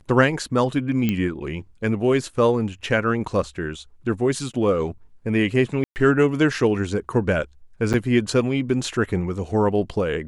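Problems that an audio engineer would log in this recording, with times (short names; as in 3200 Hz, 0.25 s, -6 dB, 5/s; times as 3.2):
1.09 pop -10 dBFS
5.84–5.96 gap 0.119 s
7.93–7.94 gap 8.3 ms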